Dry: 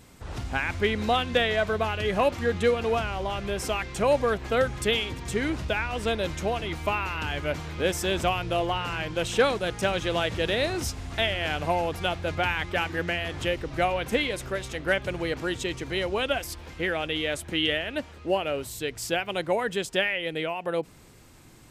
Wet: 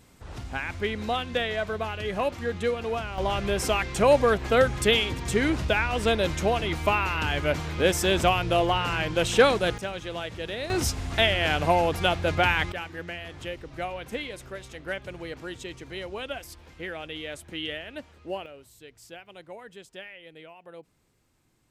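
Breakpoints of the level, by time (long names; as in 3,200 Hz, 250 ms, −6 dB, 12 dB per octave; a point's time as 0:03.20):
−4 dB
from 0:03.18 +3.5 dB
from 0:09.78 −7.5 dB
from 0:10.70 +4 dB
from 0:12.72 −8 dB
from 0:18.46 −17 dB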